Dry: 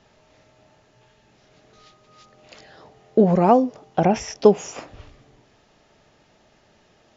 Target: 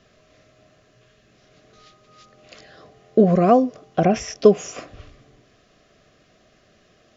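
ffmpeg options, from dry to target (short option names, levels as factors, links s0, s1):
-af "asuperstop=centerf=880:order=8:qfactor=4.4,volume=1.12"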